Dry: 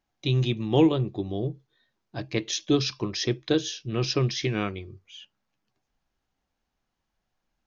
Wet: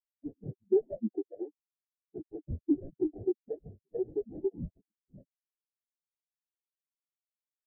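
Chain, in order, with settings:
harmonic-percussive split with one part muted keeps percussive
mid-hump overdrive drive 29 dB, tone 2,900 Hz, clips at −11 dBFS
downward compressor 16 to 1, threshold −22 dBFS, peak gain reduction 7 dB
reverb reduction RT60 0.55 s
sample-rate reduction 1,200 Hz, jitter 20%
every bin expanded away from the loudest bin 4 to 1

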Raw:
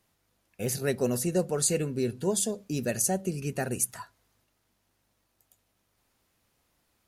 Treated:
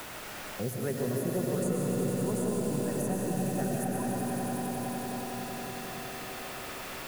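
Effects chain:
drawn EQ curve 110 Hz 0 dB, 590 Hz −4 dB, 1,100 Hz +1 dB, 4,000 Hz −20 dB, 14,000 Hz −2 dB
bit-depth reduction 8 bits, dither triangular
echo that builds up and dies away 91 ms, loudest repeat 5, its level −10.5 dB
convolution reverb RT60 4.6 s, pre-delay 75 ms, DRR −3 dB
multiband upward and downward compressor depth 70%
level −5 dB

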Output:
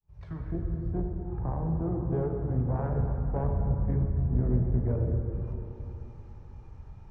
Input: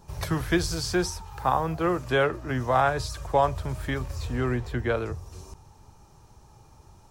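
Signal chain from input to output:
fade in at the beginning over 1.21 s
RIAA equalisation playback
treble cut that deepens with the level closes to 430 Hz, closed at −19.5 dBFS
parametric band 2,100 Hz +3.5 dB 1.2 octaves, from 0:02.60 +10.5 dB
tube saturation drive 14 dB, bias 0.65
dense smooth reverb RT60 3.4 s, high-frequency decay 0.65×, DRR 1.5 dB
level −6 dB

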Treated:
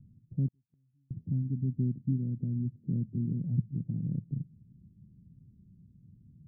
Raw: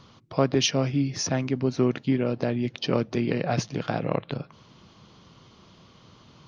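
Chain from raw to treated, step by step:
inverse Chebyshev low-pass filter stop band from 1,200 Hz, stop band 80 dB
0:00.48–0:01.11: gate with flip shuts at −38 dBFS, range −42 dB

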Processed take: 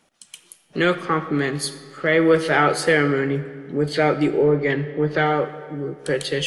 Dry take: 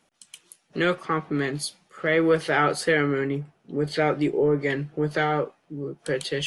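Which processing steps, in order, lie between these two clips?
0:04.43–0:05.26: low-pass filter 4,100 Hz 12 dB per octave
on a send: convolution reverb RT60 2.0 s, pre-delay 5 ms, DRR 12 dB
on the sum: level +4 dB

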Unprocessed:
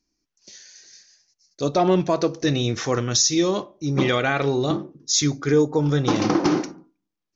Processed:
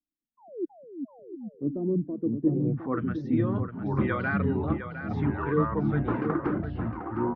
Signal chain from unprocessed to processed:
reverb reduction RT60 0.54 s
sound drawn into the spectrogram fall, 0:00.37–0:00.65, 320–1,100 Hz −20 dBFS
high-frequency loss of the air 330 metres
low-pass filter sweep 290 Hz → 1,500 Hz, 0:02.42–0:03.01
dynamic equaliser 770 Hz, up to −6 dB, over −35 dBFS, Q 1.1
delay with pitch and tempo change per echo 227 ms, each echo −4 semitones, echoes 3
on a send: single-tap delay 709 ms −7.5 dB
on the sum: multiband upward and downward expander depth 40%
level −7 dB

